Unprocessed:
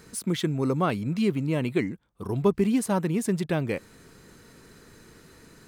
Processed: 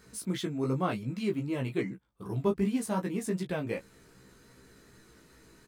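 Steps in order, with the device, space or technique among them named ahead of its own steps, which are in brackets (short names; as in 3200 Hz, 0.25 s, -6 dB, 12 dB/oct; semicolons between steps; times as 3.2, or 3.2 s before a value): double-tracked vocal (doubler 15 ms -7 dB; chorus 2.6 Hz, delay 15.5 ms, depth 2.8 ms); gain -3.5 dB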